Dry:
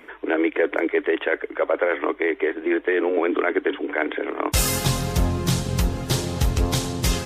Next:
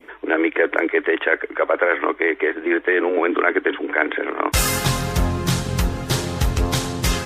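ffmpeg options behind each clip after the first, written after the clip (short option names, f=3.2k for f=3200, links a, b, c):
-af "adynamicequalizer=threshold=0.0158:dfrequency=1500:dqfactor=0.92:tfrequency=1500:tqfactor=0.92:attack=5:release=100:ratio=0.375:range=3:mode=boostabove:tftype=bell,volume=1dB"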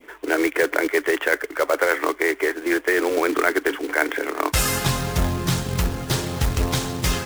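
-af "acrusher=bits=3:mode=log:mix=0:aa=0.000001,volume=-2dB"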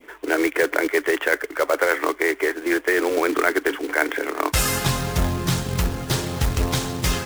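-af anull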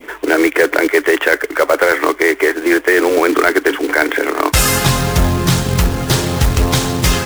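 -filter_complex "[0:a]asplit=2[a][b];[b]acompressor=threshold=-29dB:ratio=6,volume=-1dB[c];[a][c]amix=inputs=2:normalize=0,aeval=exprs='0.794*sin(PI/2*1.41*val(0)/0.794)':c=same"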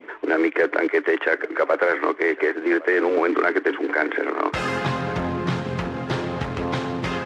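-af "highpass=160,lowpass=2.3k,aecho=1:1:1109:0.1,volume=-7dB"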